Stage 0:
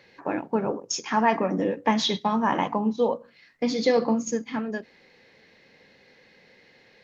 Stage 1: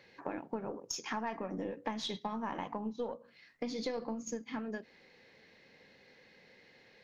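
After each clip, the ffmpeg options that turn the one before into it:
-af "aeval=exprs='0.422*(cos(1*acos(clip(val(0)/0.422,-1,1)))-cos(1*PI/2))+0.0266*(cos(4*acos(clip(val(0)/0.422,-1,1)))-cos(4*PI/2))':c=same,acompressor=threshold=-31dB:ratio=4,volume=-5dB"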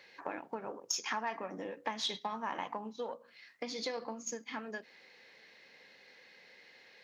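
-af "highpass=f=140:p=1,lowshelf=f=480:g=-12,volume=4.5dB"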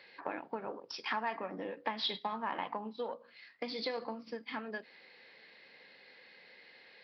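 -af "highpass=100,aresample=11025,aresample=44100,volume=1dB"

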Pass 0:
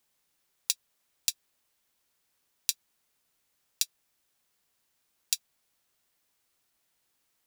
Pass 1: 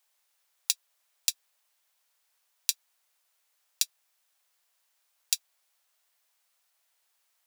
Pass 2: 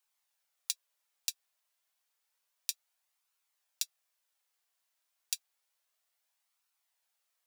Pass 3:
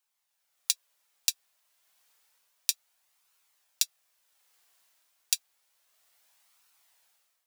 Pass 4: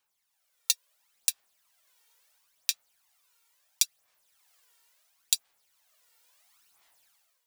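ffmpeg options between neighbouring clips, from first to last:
-af "highpass=f=560:w=0.5412,highpass=f=560:w=1.3066,volume=1.5dB"
-af "flanger=delay=0.7:depth=2.4:regen=-48:speed=0.3:shape=triangular,volume=-3.5dB"
-af "dynaudnorm=f=140:g=7:m=14dB"
-af "aphaser=in_gain=1:out_gain=1:delay=2.2:decay=0.57:speed=0.73:type=sinusoidal"

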